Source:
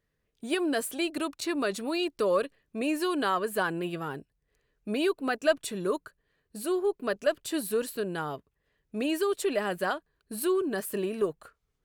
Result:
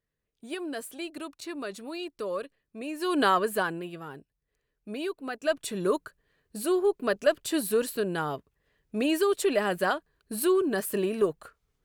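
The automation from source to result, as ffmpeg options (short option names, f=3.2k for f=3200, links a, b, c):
-af "volume=14.5dB,afade=t=in:st=2.97:d=0.26:silence=0.237137,afade=t=out:st=3.23:d=0.64:silence=0.266073,afade=t=in:st=5.36:d=0.5:silence=0.354813"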